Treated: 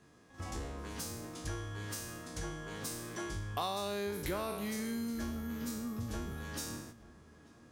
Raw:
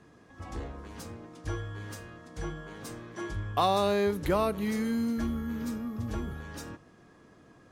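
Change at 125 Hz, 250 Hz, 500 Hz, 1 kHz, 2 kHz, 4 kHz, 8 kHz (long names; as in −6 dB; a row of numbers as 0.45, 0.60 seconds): −5.0, −7.0, −9.5, −9.5, −4.0, −3.0, +5.0 decibels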